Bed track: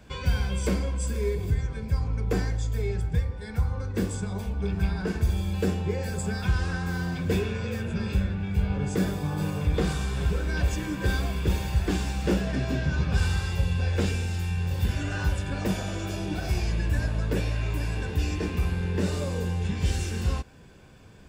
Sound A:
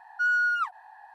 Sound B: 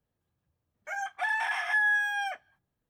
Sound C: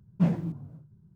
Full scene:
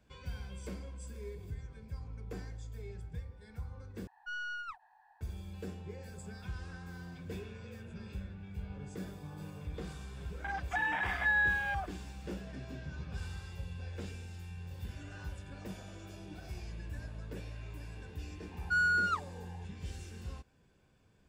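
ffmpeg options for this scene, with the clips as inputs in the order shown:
ffmpeg -i bed.wav -i cue0.wav -i cue1.wav -filter_complex "[1:a]asplit=2[link_01][link_02];[0:a]volume=-17dB[link_03];[link_01]aeval=exprs='(tanh(14.1*val(0)+0.55)-tanh(0.55))/14.1':channel_layout=same[link_04];[2:a]afwtdn=0.0224[link_05];[link_02]adynamicsmooth=sensitivity=4.5:basefreq=1300[link_06];[link_03]asplit=2[link_07][link_08];[link_07]atrim=end=4.074[link_09];[link_04]atrim=end=1.14,asetpts=PTS-STARTPTS,volume=-12.5dB[link_10];[link_08]atrim=start=5.206[link_11];[link_05]atrim=end=2.89,asetpts=PTS-STARTPTS,volume=-3.5dB,afade=type=in:duration=0.004:curve=hsin,afade=type=out:start_time=2.886:duration=0.004:curve=hsin,adelay=9520[link_12];[link_06]atrim=end=1.14,asetpts=PTS-STARTPTS,volume=-4.5dB,afade=type=in:duration=0.004:curve=hsin,afade=type=out:start_time=1.136:duration=0.004:curve=hsin,adelay=18510[link_13];[link_09][link_10]acrossfade=duration=0.004:curve1=hsin:curve2=hsin[link_14];[link_14][link_11]acrossfade=duration=0.004:curve1=hsin:curve2=hsin[link_15];[link_15][link_12][link_13]amix=inputs=3:normalize=0" out.wav

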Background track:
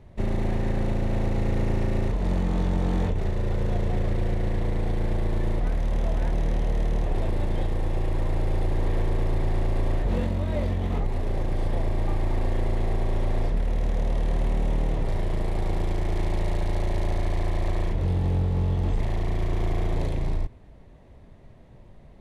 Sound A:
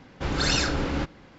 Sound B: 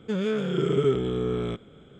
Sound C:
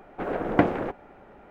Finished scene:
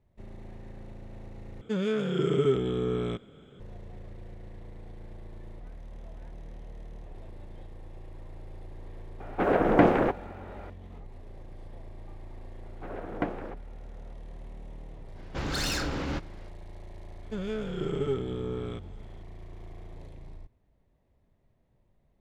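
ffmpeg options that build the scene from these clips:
ffmpeg -i bed.wav -i cue0.wav -i cue1.wav -i cue2.wav -filter_complex "[2:a]asplit=2[link_01][link_02];[3:a]asplit=2[link_03][link_04];[0:a]volume=-19.5dB[link_05];[link_03]alimiter=level_in=11dB:limit=-1dB:release=50:level=0:latency=1[link_06];[1:a]asoftclip=type=hard:threshold=-23.5dB[link_07];[link_02]aeval=exprs='if(lt(val(0),0),0.708*val(0),val(0))':channel_layout=same[link_08];[link_05]asplit=2[link_09][link_10];[link_09]atrim=end=1.614[link_11];[link_01]atrim=end=1.99,asetpts=PTS-STARTPTS,volume=-2dB[link_12];[link_10]atrim=start=3.596[link_13];[link_06]atrim=end=1.5,asetpts=PTS-STARTPTS,volume=-5.5dB,afade=type=in:duration=0.004:curve=hsin,afade=type=out:start_time=1.496:duration=0.004:curve=hsin,adelay=9200[link_14];[link_04]atrim=end=1.5,asetpts=PTS-STARTPTS,volume=-10.5dB,afade=type=in:duration=0.004:curve=hsin,afade=type=out:start_time=1.496:duration=0.004:curve=hsin,adelay=12630[link_15];[link_07]atrim=end=1.38,asetpts=PTS-STARTPTS,volume=-3.5dB,afade=type=in:duration=0.05,afade=type=out:start_time=1.33:duration=0.05,adelay=15140[link_16];[link_08]atrim=end=1.99,asetpts=PTS-STARTPTS,volume=-6dB,afade=type=in:duration=0.004:curve=hsin,afade=type=out:start_time=1.986:duration=0.004:curve=hsin,adelay=17230[link_17];[link_11][link_12]acrossfade=duration=0.004:curve1=hsin:curve2=hsin[link_18];[link_18][link_13]acrossfade=duration=0.004:curve1=hsin:curve2=hsin[link_19];[link_19][link_14][link_15][link_16][link_17]amix=inputs=5:normalize=0" out.wav

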